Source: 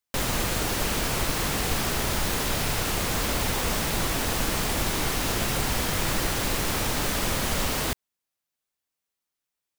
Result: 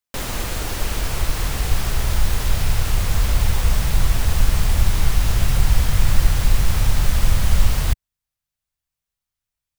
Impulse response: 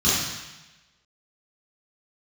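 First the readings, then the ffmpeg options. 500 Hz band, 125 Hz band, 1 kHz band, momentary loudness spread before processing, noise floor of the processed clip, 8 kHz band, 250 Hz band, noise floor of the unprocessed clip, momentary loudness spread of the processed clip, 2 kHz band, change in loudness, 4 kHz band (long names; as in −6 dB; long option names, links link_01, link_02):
−3.0 dB, +10.5 dB, −1.5 dB, 0 LU, below −85 dBFS, −1.0 dB, −1.0 dB, below −85 dBFS, 6 LU, −1.0 dB, +4.0 dB, −1.0 dB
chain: -af "asubboost=boost=10.5:cutoff=95,volume=-1dB"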